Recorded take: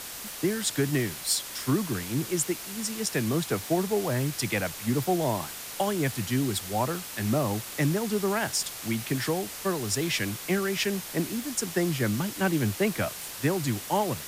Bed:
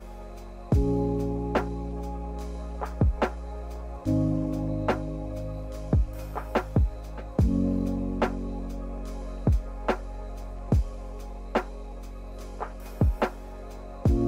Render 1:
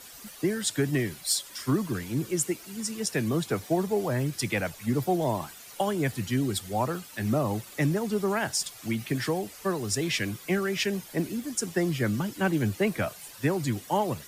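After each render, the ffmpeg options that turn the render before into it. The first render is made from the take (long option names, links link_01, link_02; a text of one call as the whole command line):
ffmpeg -i in.wav -af "afftdn=noise_reduction=12:noise_floor=-40" out.wav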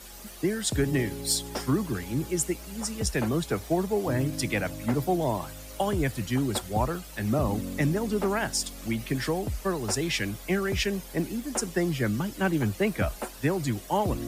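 ffmpeg -i in.wav -i bed.wav -filter_complex "[1:a]volume=-9.5dB[link_01];[0:a][link_01]amix=inputs=2:normalize=0" out.wav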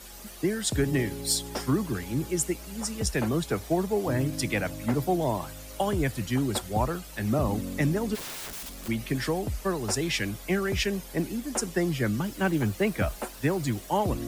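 ffmpeg -i in.wav -filter_complex "[0:a]asplit=3[link_01][link_02][link_03];[link_01]afade=type=out:start_time=8.14:duration=0.02[link_04];[link_02]aeval=exprs='(mod(44.7*val(0)+1,2)-1)/44.7':channel_layout=same,afade=type=in:start_time=8.14:duration=0.02,afade=type=out:start_time=8.87:duration=0.02[link_05];[link_03]afade=type=in:start_time=8.87:duration=0.02[link_06];[link_04][link_05][link_06]amix=inputs=3:normalize=0,asettb=1/sr,asplit=3[link_07][link_08][link_09];[link_07]atrim=end=12.244[link_10];[link_08]atrim=start=12.24:end=13.9,asetpts=PTS-STARTPTS,afade=type=in:duration=0.004:curve=qsin,afade=type=out:start_time=1.656:duration=0.004:curve=qsin,acrusher=bits=7:mix=0:aa=0.5[link_11];[link_09]atrim=start=13.896[link_12];[link_10][link_11]acrossfade=duration=0.004:curve1=hsin:curve2=qsin[link_13];[link_13][link_12]acrossfade=duration=0.004:curve1=qsin:curve2=hsin" out.wav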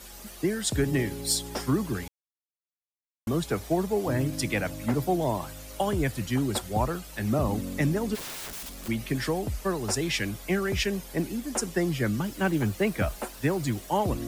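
ffmpeg -i in.wav -filter_complex "[0:a]asplit=3[link_01][link_02][link_03];[link_01]atrim=end=2.08,asetpts=PTS-STARTPTS,afade=type=out:start_time=2.076:duration=0.004:curve=hsin[link_04];[link_02]atrim=start=2.08:end=3.27,asetpts=PTS-STARTPTS,volume=0[link_05];[link_03]atrim=start=3.27,asetpts=PTS-STARTPTS,afade=type=in:duration=0.004:curve=hsin[link_06];[link_04][link_05][link_06]concat=n=3:v=0:a=1" out.wav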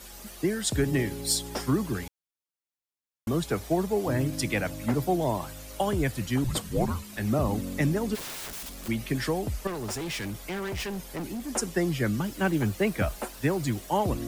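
ffmpeg -i in.wav -filter_complex "[0:a]asettb=1/sr,asplit=3[link_01][link_02][link_03];[link_01]atrim=end=6.444[link_04];[link_02]atrim=start=6.44:end=7.17,asetpts=PTS-STARTPTS,afade=type=in:duration=0.004:curve=qsin,afade=type=out:start_time=0.726:duration=0.004:curve=qsin,afreqshift=-260[link_05];[link_03]atrim=start=7.166[link_06];[link_04][link_05]acrossfade=duration=0.004:curve1=hsin:curve2=qsin[link_07];[link_07][link_06]acrossfade=duration=0.004:curve1=qsin:curve2=hsin,asettb=1/sr,asplit=3[link_08][link_09][link_10];[link_08]atrim=end=9.674[link_11];[link_09]atrim=start=9.67:end=11.49,asetpts=PTS-STARTPTS,afade=type=in:duration=0.004:curve=qsin,afade=type=out:start_time=1.816:duration=0.004:curve=qsin,asoftclip=type=hard:threshold=-31dB[link_12];[link_10]atrim=start=11.486[link_13];[link_11][link_12]acrossfade=duration=0.004:curve1=hsin:curve2=qsin[link_14];[link_14][link_13]acrossfade=duration=0.004:curve1=qsin:curve2=hsin" out.wav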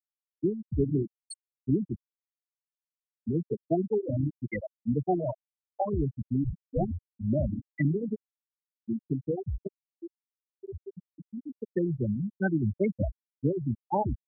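ffmpeg -i in.wav -af "afftfilt=real='re*gte(hypot(re,im),0.251)':imag='im*gte(hypot(re,im),0.251)':win_size=1024:overlap=0.75,adynamicequalizer=threshold=0.00224:dfrequency=2800:dqfactor=0.7:tfrequency=2800:tqfactor=0.7:attack=5:release=100:ratio=0.375:range=3.5:mode=boostabove:tftype=highshelf" out.wav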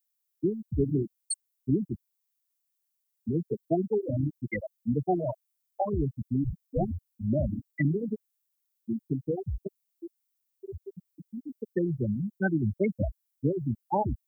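ffmpeg -i in.wav -af "aemphasis=mode=production:type=75kf" out.wav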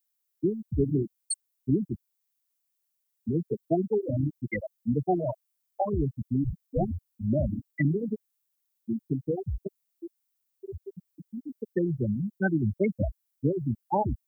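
ffmpeg -i in.wav -af "volume=1dB" out.wav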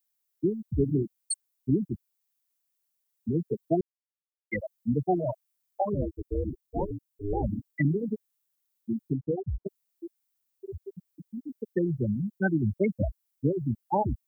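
ffmpeg -i in.wav -filter_complex "[0:a]asplit=3[link_01][link_02][link_03];[link_01]afade=type=out:start_time=5.94:duration=0.02[link_04];[link_02]aeval=exprs='val(0)*sin(2*PI*200*n/s)':channel_layout=same,afade=type=in:start_time=5.94:duration=0.02,afade=type=out:start_time=7.42:duration=0.02[link_05];[link_03]afade=type=in:start_time=7.42:duration=0.02[link_06];[link_04][link_05][link_06]amix=inputs=3:normalize=0,asplit=3[link_07][link_08][link_09];[link_07]afade=type=out:start_time=9.11:duration=0.02[link_10];[link_08]lowpass=frequency=1300:width=0.5412,lowpass=frequency=1300:width=1.3066,afade=type=in:start_time=9.11:duration=0.02,afade=type=out:start_time=9.64:duration=0.02[link_11];[link_09]afade=type=in:start_time=9.64:duration=0.02[link_12];[link_10][link_11][link_12]amix=inputs=3:normalize=0,asplit=3[link_13][link_14][link_15];[link_13]atrim=end=3.81,asetpts=PTS-STARTPTS,afade=type=out:start_time=3.806:duration=0.004:curve=hsin[link_16];[link_14]atrim=start=3.81:end=4.51,asetpts=PTS-STARTPTS,volume=0[link_17];[link_15]atrim=start=4.51,asetpts=PTS-STARTPTS,afade=type=in:duration=0.004:curve=hsin[link_18];[link_16][link_17][link_18]concat=n=3:v=0:a=1" out.wav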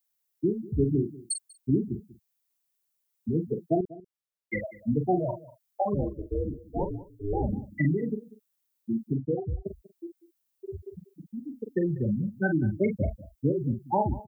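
ffmpeg -i in.wav -filter_complex "[0:a]asplit=2[link_01][link_02];[link_02]adelay=44,volume=-8dB[link_03];[link_01][link_03]amix=inputs=2:normalize=0,asplit=2[link_04][link_05];[link_05]adelay=192.4,volume=-19dB,highshelf=frequency=4000:gain=-4.33[link_06];[link_04][link_06]amix=inputs=2:normalize=0" out.wav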